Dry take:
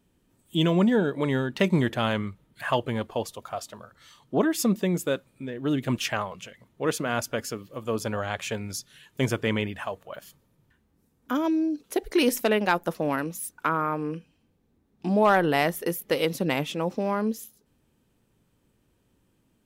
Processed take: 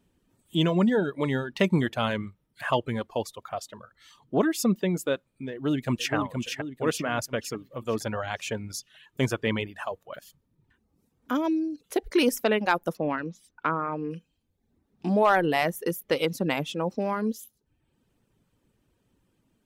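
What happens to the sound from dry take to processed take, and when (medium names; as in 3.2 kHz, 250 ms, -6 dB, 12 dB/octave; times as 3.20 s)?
5.52–6.14 s: echo throw 470 ms, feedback 50%, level -4 dB
12.97–14.11 s: distance through air 160 m
whole clip: reverb removal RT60 0.72 s; treble shelf 9.6 kHz -4.5 dB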